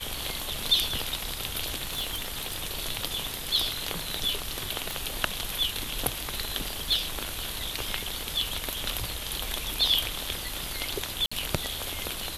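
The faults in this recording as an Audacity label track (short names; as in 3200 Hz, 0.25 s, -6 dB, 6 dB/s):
1.820000	2.560000	clipped -25.5 dBFS
4.910000	4.910000	pop
11.260000	11.310000	gap 55 ms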